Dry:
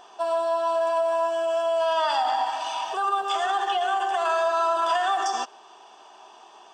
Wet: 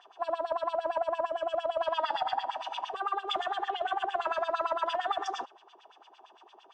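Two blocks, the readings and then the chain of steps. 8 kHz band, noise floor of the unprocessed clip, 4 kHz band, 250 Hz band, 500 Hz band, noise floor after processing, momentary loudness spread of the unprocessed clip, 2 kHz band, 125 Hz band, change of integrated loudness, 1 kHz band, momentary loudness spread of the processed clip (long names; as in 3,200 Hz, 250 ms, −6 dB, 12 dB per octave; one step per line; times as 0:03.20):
below −15 dB, −50 dBFS, −6.5 dB, −5.5 dB, −8.0 dB, −60 dBFS, 5 LU, −7.5 dB, can't be measured, −7.5 dB, −7.5 dB, 5 LU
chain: auto-filter band-pass sine 8.8 Hz 320–3,700 Hz
highs frequency-modulated by the lows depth 0.12 ms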